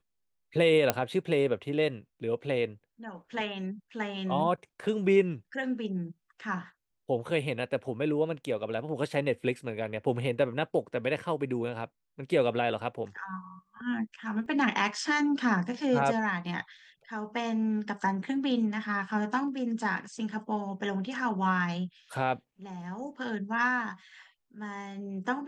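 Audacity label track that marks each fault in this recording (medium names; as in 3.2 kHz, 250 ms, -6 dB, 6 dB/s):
0.900000	0.900000	pop -8 dBFS
14.460000	14.460000	dropout 2.1 ms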